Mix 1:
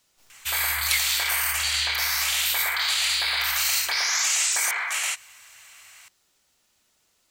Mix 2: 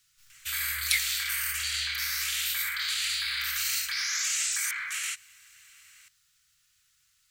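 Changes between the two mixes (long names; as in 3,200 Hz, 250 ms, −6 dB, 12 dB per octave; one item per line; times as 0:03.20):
background −5.5 dB
master: add Chebyshev band-stop filter 140–1,400 Hz, order 3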